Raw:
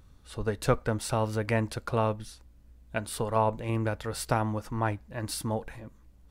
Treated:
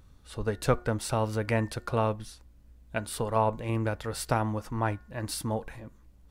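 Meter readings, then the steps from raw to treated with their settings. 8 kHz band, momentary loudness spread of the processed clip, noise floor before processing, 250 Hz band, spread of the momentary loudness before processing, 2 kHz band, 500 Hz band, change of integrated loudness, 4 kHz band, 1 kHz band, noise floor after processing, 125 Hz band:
0.0 dB, 11 LU, −57 dBFS, 0.0 dB, 11 LU, 0.0 dB, 0.0 dB, 0.0 dB, 0.0 dB, 0.0 dB, −56 dBFS, 0.0 dB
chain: hum removal 359.9 Hz, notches 5

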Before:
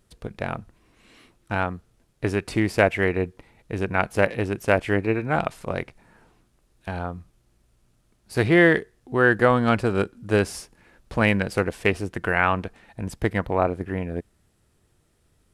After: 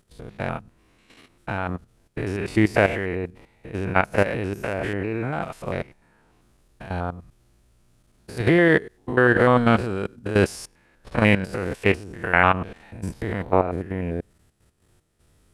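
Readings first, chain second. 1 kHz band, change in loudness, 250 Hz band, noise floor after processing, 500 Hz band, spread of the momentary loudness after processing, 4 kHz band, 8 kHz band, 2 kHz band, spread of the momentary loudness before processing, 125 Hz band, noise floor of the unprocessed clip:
+1.5 dB, +0.5 dB, +1.0 dB, −62 dBFS, 0.0 dB, 17 LU, 0.0 dB, −1.5 dB, 0.0 dB, 16 LU, +1.0 dB, −66 dBFS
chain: spectrum averaged block by block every 100 ms
output level in coarse steps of 11 dB
level +6.5 dB

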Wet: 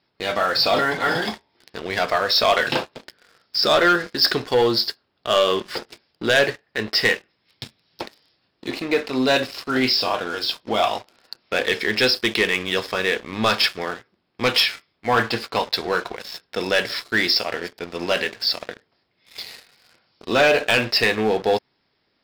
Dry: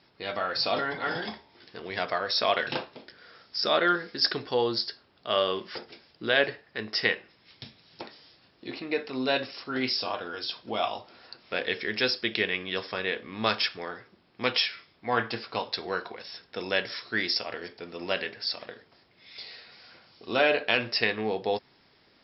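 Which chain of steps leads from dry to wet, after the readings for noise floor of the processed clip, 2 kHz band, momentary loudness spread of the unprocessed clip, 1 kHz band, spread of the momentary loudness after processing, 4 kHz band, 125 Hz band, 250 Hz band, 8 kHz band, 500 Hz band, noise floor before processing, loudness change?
−70 dBFS, +7.5 dB, 18 LU, +8.0 dB, 17 LU, +8.0 dB, +9.5 dB, +8.5 dB, can't be measured, +8.0 dB, −63 dBFS, +8.0 dB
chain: leveller curve on the samples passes 3
level −1.5 dB

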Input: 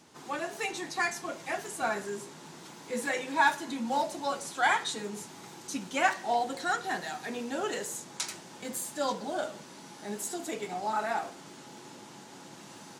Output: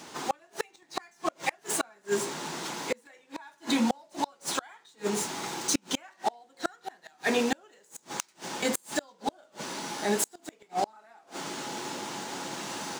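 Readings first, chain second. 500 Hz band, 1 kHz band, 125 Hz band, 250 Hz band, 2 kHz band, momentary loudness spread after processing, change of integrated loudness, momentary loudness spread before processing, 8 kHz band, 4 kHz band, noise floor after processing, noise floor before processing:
+1.5 dB, −3.0 dB, +3.5 dB, +5.0 dB, −4.0 dB, 12 LU, 0.0 dB, 20 LU, +5.0 dB, +3.5 dB, −64 dBFS, −49 dBFS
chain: running median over 3 samples
low-shelf EQ 200 Hz −11.5 dB
in parallel at −2 dB: brickwall limiter −22.5 dBFS, peak gain reduction 10.5 dB
on the sum: gate with flip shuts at −23 dBFS, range −36 dB
level +8.5 dB

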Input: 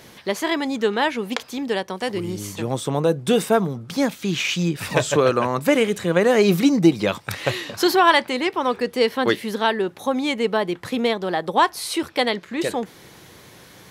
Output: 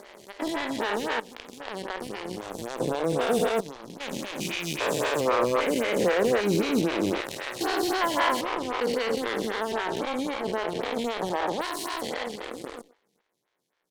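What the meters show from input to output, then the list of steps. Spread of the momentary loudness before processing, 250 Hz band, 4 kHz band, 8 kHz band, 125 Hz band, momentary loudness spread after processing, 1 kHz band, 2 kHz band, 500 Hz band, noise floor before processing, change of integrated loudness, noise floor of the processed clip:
10 LU, −8.5 dB, −7.0 dB, −5.0 dB, −10.5 dB, 12 LU, −6.5 dB, −6.5 dB, −6.0 dB, −47 dBFS, −6.5 dB, −75 dBFS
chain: spectrum averaged block by block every 400 ms
high-pass filter 360 Hz 6 dB per octave
healed spectral selection 0:12.17–0:13.04, 550–4,500 Hz both
high-shelf EQ 12,000 Hz −9.5 dB
gain into a clipping stage and back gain 19 dB
harmonic generator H 7 −17 dB, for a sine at −18.5 dBFS
far-end echo of a speakerphone 120 ms, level −18 dB
phaser with staggered stages 3.8 Hz
level +4.5 dB

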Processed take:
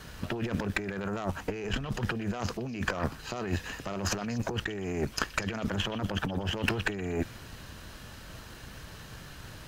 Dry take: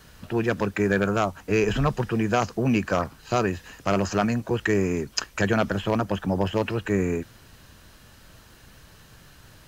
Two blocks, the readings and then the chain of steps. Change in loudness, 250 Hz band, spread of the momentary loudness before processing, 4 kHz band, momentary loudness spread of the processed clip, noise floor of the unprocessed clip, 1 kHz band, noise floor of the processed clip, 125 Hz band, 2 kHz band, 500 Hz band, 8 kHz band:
−8.0 dB, −8.5 dB, 5 LU, −1.0 dB, 14 LU, −52 dBFS, −9.0 dB, −47 dBFS, −6.5 dB, −5.0 dB, −11.0 dB, −3.0 dB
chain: high-shelf EQ 6,900 Hz −5 dB
compressor whose output falls as the input rises −31 dBFS, ratio −1
on a send: echo through a band-pass that steps 122 ms, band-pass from 2,800 Hz, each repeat 0.7 octaves, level −11.5 dB
on the sum: harmonic generator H 6 −18 dB, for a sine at −9 dBFS
level −1.5 dB

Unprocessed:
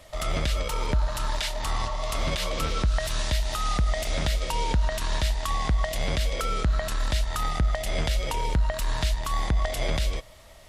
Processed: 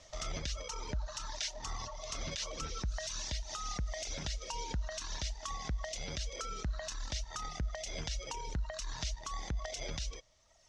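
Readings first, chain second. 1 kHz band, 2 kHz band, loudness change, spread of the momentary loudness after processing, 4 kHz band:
−13.0 dB, −12.5 dB, −12.0 dB, 3 LU, −9.0 dB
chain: in parallel at −2 dB: brickwall limiter −25 dBFS, peak gain reduction 10 dB
on the sum: transistor ladder low-pass 6,500 Hz, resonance 70%
reverb reduction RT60 1.7 s
level −2.5 dB

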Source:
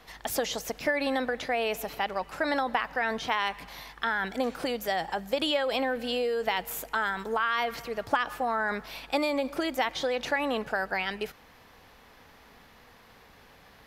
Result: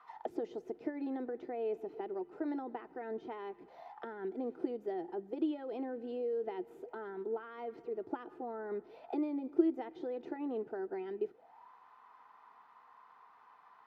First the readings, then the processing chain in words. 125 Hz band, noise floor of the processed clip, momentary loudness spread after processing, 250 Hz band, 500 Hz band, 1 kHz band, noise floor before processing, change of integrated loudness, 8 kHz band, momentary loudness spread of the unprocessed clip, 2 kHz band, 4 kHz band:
below −10 dB, −62 dBFS, 8 LU, −3.0 dB, −7.5 dB, −16.0 dB, −55 dBFS, −10.0 dB, below −35 dB, 5 LU, −25.0 dB, below −25 dB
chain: envelope filter 360–1,200 Hz, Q 9.1, down, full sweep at −31.5 dBFS
notch comb filter 560 Hz
level +9 dB

